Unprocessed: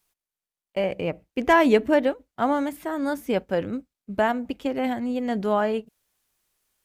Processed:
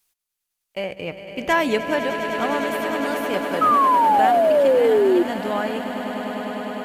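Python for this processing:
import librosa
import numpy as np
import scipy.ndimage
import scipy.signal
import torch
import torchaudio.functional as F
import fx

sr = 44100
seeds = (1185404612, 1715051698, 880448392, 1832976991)

y = fx.tilt_shelf(x, sr, db=-4.5, hz=1500.0)
y = fx.echo_swell(y, sr, ms=101, loudest=8, wet_db=-11.0)
y = fx.spec_paint(y, sr, seeds[0], shape='fall', start_s=3.61, length_s=1.62, low_hz=340.0, high_hz=1300.0, level_db=-16.0)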